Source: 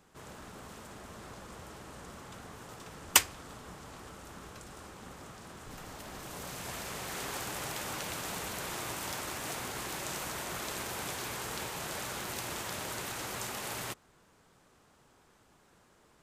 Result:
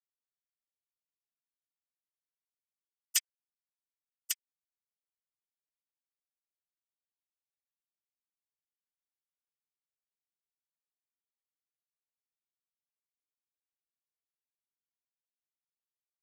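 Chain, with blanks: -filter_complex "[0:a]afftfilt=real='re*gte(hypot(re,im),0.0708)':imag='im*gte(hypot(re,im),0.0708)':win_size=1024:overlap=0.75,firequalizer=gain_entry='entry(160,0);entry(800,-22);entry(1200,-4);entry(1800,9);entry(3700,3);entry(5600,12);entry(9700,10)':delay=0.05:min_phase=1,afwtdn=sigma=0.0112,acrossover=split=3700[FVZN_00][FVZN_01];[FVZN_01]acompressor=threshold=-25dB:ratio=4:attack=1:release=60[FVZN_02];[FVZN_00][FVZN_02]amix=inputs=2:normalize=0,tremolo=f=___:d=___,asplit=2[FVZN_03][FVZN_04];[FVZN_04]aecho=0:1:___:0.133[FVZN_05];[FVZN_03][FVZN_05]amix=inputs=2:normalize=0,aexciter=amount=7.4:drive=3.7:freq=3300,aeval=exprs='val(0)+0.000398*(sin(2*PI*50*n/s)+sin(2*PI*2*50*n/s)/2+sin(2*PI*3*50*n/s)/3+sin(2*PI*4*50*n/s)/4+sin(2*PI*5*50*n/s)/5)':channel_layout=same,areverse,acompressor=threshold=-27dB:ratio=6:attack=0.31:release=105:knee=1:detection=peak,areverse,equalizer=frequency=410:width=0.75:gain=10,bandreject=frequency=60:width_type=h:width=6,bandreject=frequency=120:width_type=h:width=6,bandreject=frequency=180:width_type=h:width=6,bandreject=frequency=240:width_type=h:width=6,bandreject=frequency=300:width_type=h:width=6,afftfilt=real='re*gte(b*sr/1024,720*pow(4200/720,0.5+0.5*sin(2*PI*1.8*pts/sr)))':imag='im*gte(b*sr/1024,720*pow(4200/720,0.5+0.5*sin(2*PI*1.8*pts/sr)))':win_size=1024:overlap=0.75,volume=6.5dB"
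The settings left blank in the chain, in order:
4.2, 0.91, 1149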